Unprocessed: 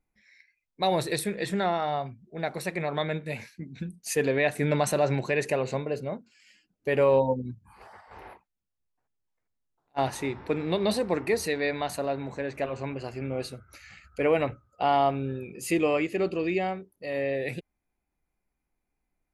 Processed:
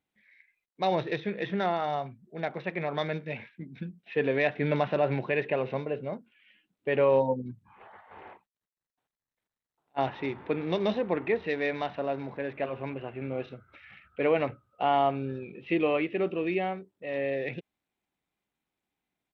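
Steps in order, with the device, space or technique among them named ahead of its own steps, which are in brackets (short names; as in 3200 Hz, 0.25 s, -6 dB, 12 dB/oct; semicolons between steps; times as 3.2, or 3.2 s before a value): Bluetooth headset (HPF 120 Hz 12 dB/oct; downsampling 8000 Hz; gain -1.5 dB; SBC 64 kbps 32000 Hz)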